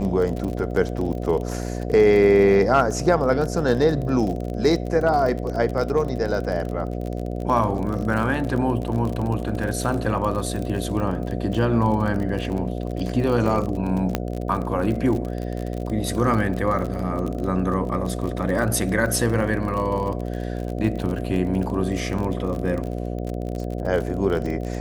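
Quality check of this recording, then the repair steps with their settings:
buzz 60 Hz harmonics 12 -28 dBFS
crackle 39/s -27 dBFS
14.15 pop -7 dBFS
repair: de-click; de-hum 60 Hz, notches 12

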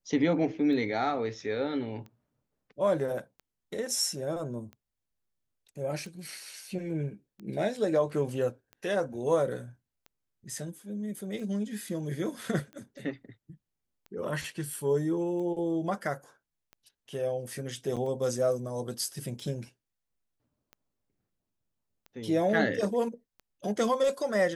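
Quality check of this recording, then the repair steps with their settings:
tick 45 rpm -33 dBFS
17.96–17.97 gap 6.7 ms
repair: de-click; interpolate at 17.96, 6.7 ms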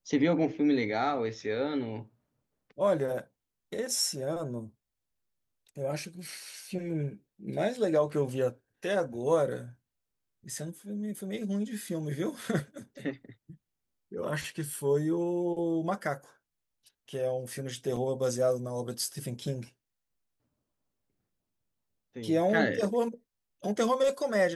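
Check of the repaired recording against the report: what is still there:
none

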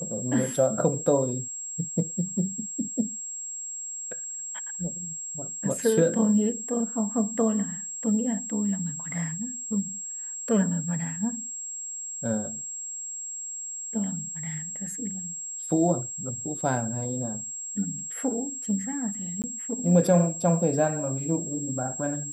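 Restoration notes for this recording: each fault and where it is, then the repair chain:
tone 7600 Hz -33 dBFS
19.42–19.44 gap 18 ms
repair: notch 7600 Hz, Q 30; interpolate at 19.42, 18 ms

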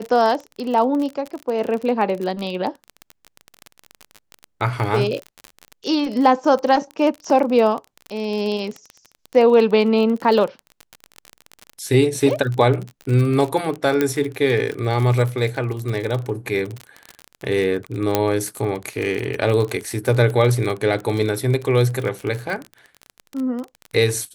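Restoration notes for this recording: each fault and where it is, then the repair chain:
crackle 32/s -24 dBFS
14.01 pop -6 dBFS
18.15 pop -2 dBFS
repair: de-click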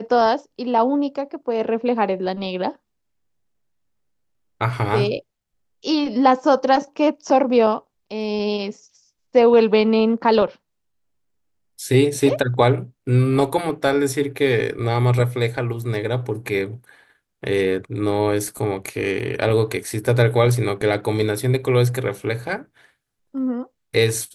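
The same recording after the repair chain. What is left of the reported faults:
none

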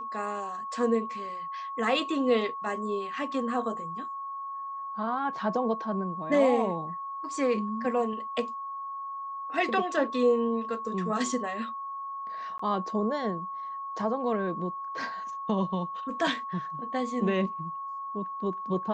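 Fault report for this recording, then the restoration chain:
tone 1100 Hz -34 dBFS
12.58–12.59 gap 14 ms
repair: notch 1100 Hz, Q 30; interpolate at 12.58, 14 ms

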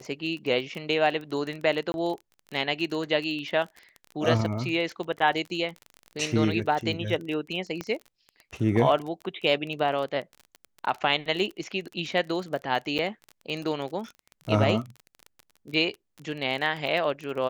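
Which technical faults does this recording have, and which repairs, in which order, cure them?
crackle 25/s -32 dBFS
1.92–1.94 gap 21 ms
7.81 pop -18 dBFS
12.98–12.99 gap 7.8 ms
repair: de-click; interpolate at 1.92, 21 ms; interpolate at 12.98, 7.8 ms

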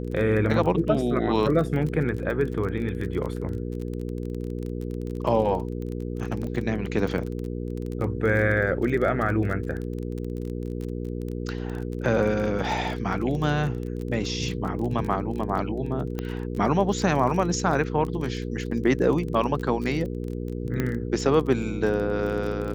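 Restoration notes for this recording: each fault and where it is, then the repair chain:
crackle 24/s -30 dBFS
hum 60 Hz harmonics 8 -31 dBFS
16.19 pop -16 dBFS
20.8 pop -13 dBFS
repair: de-click; de-hum 60 Hz, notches 8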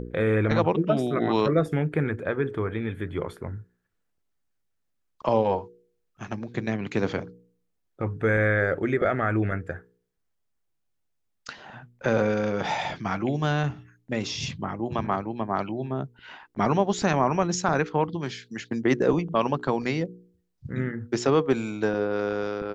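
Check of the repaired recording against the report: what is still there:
16.19 pop

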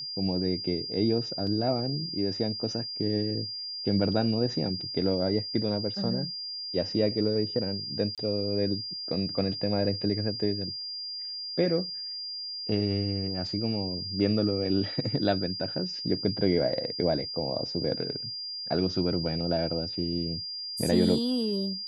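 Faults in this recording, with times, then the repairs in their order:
tone 4800 Hz -34 dBFS
1.47 gap 2.8 ms
8.15–8.18 gap 27 ms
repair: notch 4800 Hz, Q 30; interpolate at 1.47, 2.8 ms; interpolate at 8.15, 27 ms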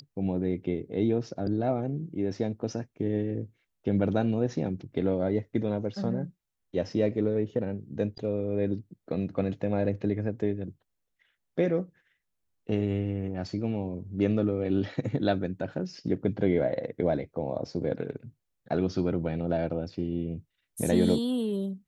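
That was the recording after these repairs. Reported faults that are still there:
none

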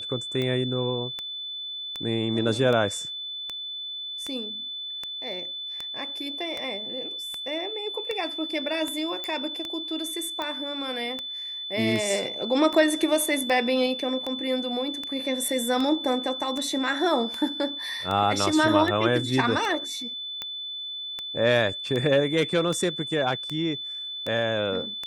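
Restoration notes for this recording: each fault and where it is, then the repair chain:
tick 78 rpm -17 dBFS
tone 3500 Hz -32 dBFS
9.24 pop -17 dBFS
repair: de-click; notch 3500 Hz, Q 30

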